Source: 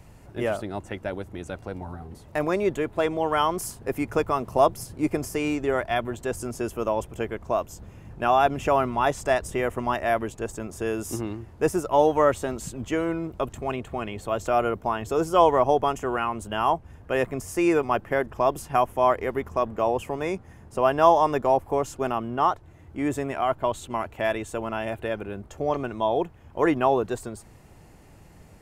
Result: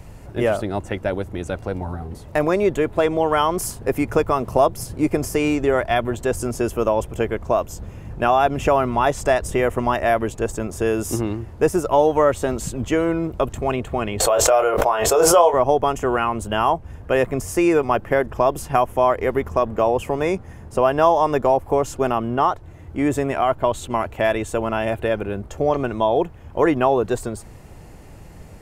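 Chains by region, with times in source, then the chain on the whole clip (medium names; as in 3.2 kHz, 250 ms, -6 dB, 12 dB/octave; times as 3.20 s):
14.20–15.54 s: resonant low shelf 350 Hz -13.5 dB, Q 1.5 + doubling 23 ms -6.5 dB + swell ahead of each attack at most 41 dB/s
whole clip: bass shelf 82 Hz +6 dB; compression 2:1, threshold -23 dBFS; peaking EQ 510 Hz +2.5 dB 0.69 oct; trim +6.5 dB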